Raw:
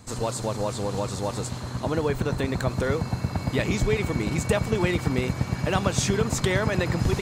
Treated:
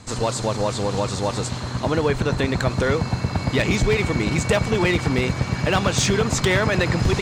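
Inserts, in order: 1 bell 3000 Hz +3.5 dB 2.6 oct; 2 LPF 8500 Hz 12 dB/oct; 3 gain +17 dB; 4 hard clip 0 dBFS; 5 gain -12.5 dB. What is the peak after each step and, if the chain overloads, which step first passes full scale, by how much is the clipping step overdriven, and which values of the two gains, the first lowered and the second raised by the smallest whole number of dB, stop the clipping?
-7.5, -7.5, +9.5, 0.0, -12.5 dBFS; step 3, 9.5 dB; step 3 +7 dB, step 5 -2.5 dB

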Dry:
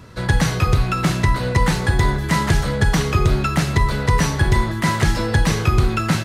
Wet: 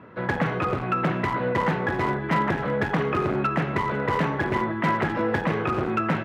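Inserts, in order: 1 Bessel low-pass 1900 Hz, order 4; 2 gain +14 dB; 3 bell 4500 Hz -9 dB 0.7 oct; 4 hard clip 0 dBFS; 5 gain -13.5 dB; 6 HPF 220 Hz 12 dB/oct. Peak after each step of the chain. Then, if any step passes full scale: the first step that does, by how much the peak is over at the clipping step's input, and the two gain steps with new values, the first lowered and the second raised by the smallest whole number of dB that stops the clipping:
-6.5, +7.5, +7.5, 0.0, -13.5, -10.0 dBFS; step 2, 7.5 dB; step 2 +6 dB, step 5 -5.5 dB

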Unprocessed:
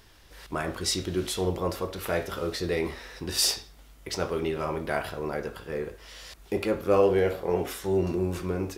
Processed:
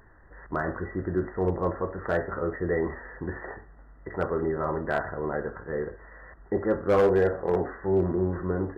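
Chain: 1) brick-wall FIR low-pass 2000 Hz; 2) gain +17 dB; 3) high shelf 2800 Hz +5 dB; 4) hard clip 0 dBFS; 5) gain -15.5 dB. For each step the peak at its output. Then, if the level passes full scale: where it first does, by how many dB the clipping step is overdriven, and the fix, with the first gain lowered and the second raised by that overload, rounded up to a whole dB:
-10.0, +7.0, +7.0, 0.0, -15.5 dBFS; step 2, 7.0 dB; step 2 +10 dB, step 5 -8.5 dB

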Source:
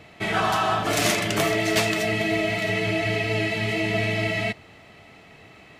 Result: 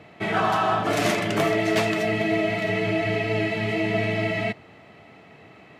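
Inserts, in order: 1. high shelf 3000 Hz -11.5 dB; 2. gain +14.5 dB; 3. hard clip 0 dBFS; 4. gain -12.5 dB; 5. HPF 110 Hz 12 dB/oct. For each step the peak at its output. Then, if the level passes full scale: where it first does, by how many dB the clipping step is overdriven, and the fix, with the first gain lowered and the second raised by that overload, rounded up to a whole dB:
-11.0, +3.5, 0.0, -12.5, -9.5 dBFS; step 2, 3.5 dB; step 2 +10.5 dB, step 4 -8.5 dB

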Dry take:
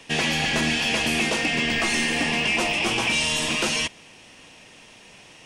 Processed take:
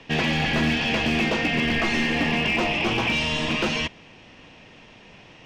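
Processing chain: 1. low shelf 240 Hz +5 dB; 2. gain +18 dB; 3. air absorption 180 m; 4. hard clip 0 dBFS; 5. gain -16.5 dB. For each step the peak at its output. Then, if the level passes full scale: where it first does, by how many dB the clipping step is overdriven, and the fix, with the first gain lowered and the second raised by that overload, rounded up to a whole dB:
-10.5, +7.5, +6.0, 0.0, -16.5 dBFS; step 2, 6.0 dB; step 2 +12 dB, step 5 -10.5 dB

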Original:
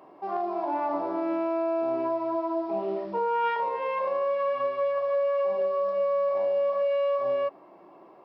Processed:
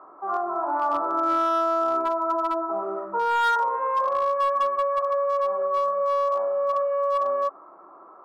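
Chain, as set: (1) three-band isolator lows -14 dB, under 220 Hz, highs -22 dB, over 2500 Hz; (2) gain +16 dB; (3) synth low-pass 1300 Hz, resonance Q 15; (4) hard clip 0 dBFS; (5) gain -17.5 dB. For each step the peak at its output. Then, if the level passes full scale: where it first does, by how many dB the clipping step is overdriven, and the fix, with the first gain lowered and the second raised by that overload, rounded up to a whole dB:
-18.5, -2.5, +7.0, 0.0, -17.5 dBFS; step 3, 7.0 dB; step 2 +9 dB, step 5 -10.5 dB

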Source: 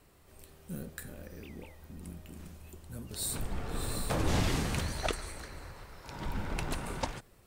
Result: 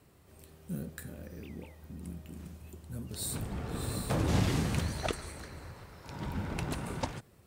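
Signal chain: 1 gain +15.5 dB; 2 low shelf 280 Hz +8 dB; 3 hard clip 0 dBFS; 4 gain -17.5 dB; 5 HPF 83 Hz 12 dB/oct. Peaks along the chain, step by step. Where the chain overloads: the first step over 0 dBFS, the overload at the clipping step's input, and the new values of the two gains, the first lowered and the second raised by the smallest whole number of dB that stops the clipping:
-2.0, +4.0, 0.0, -17.5, -16.5 dBFS; step 2, 4.0 dB; step 1 +11.5 dB, step 4 -13.5 dB

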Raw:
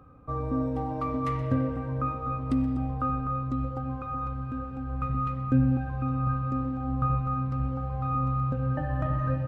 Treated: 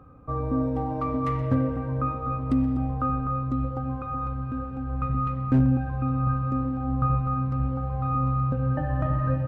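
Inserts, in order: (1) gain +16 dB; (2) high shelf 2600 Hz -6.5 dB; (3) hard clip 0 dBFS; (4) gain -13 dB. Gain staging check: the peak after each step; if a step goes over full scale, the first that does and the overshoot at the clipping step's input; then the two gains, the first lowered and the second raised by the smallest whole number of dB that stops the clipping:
+3.5, +3.5, 0.0, -13.0 dBFS; step 1, 3.5 dB; step 1 +12 dB, step 4 -9 dB

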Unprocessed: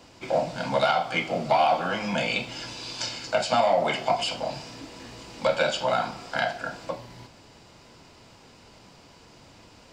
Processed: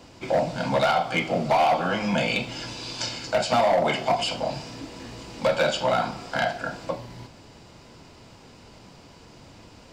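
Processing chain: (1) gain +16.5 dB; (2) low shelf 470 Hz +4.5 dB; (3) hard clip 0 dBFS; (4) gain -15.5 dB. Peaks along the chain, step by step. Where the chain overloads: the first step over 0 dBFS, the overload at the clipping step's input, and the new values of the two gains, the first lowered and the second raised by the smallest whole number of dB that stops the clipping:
+6.0, +7.5, 0.0, -15.5 dBFS; step 1, 7.5 dB; step 1 +8.5 dB, step 4 -7.5 dB

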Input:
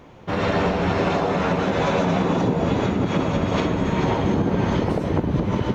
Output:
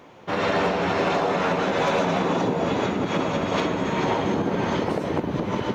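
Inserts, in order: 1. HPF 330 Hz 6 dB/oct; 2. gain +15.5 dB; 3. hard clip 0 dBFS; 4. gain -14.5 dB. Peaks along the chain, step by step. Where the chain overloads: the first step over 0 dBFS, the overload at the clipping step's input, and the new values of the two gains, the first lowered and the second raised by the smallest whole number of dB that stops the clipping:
-10.5, +5.0, 0.0, -14.5 dBFS; step 2, 5.0 dB; step 2 +10.5 dB, step 4 -9.5 dB

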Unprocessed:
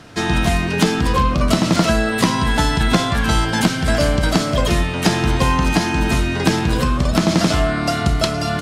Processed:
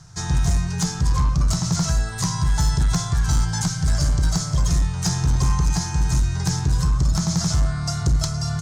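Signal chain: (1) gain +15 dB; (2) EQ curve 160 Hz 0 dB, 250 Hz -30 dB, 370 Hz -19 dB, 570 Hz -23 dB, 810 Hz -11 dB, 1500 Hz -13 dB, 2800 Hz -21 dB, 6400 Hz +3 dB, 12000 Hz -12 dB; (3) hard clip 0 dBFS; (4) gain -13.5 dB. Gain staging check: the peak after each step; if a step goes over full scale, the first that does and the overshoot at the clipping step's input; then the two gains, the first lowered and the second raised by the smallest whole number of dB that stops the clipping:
+12.0, +8.0, 0.0, -13.5 dBFS; step 1, 8.0 dB; step 1 +7 dB, step 4 -5.5 dB

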